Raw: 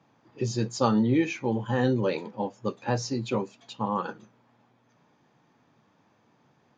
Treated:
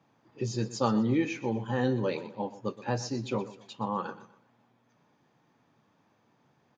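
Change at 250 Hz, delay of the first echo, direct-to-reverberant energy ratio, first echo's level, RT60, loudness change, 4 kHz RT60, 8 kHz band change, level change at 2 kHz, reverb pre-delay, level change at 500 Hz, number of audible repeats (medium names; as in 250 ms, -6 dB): -3.5 dB, 123 ms, no reverb, -15.5 dB, no reverb, -3.5 dB, no reverb, no reading, -3.5 dB, no reverb, -3.5 dB, 3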